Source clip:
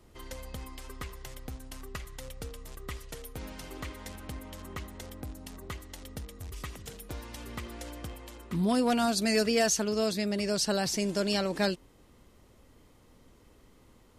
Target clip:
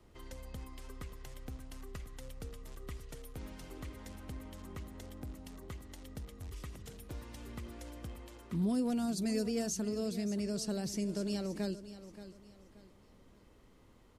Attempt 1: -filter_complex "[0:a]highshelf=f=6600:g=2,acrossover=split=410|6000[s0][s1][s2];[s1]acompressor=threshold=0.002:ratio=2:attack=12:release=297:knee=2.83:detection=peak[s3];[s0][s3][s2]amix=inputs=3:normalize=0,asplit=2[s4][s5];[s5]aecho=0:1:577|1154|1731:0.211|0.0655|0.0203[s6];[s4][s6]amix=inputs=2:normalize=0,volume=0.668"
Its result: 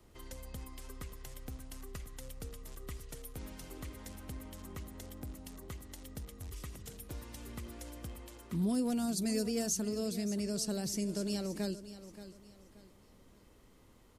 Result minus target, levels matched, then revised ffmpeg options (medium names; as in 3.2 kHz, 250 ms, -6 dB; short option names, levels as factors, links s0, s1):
8 kHz band +4.0 dB
-filter_complex "[0:a]highshelf=f=6600:g=-7,acrossover=split=410|6000[s0][s1][s2];[s1]acompressor=threshold=0.002:ratio=2:attack=12:release=297:knee=2.83:detection=peak[s3];[s0][s3][s2]amix=inputs=3:normalize=0,asplit=2[s4][s5];[s5]aecho=0:1:577|1154|1731:0.211|0.0655|0.0203[s6];[s4][s6]amix=inputs=2:normalize=0,volume=0.668"